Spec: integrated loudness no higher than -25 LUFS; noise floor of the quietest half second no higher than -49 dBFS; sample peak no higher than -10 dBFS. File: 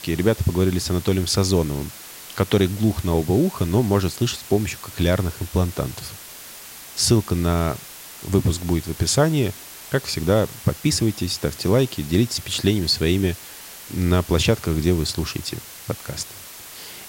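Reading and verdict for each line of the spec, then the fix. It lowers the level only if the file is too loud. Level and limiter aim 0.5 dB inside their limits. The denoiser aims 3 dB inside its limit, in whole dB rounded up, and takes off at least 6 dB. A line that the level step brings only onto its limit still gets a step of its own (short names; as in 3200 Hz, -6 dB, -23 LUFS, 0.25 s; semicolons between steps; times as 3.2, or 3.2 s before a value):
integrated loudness -21.5 LUFS: fail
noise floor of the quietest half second -40 dBFS: fail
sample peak -5.5 dBFS: fail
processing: denoiser 8 dB, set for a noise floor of -40 dBFS; gain -4 dB; limiter -10.5 dBFS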